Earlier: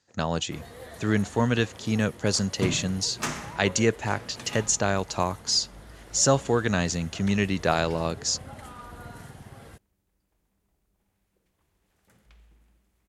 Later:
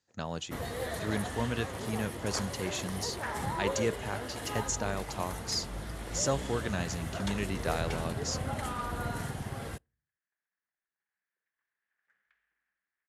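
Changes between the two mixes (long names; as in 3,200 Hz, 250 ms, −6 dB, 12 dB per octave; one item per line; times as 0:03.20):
speech −9.5 dB
first sound +7.5 dB
second sound: add resonant band-pass 1,700 Hz, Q 6.5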